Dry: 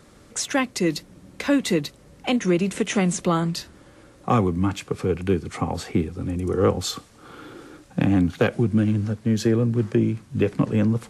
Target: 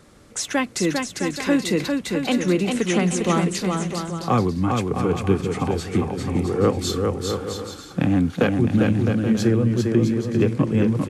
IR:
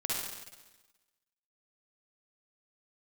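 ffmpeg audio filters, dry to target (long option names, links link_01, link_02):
-af "aecho=1:1:400|660|829|938.8|1010:0.631|0.398|0.251|0.158|0.1"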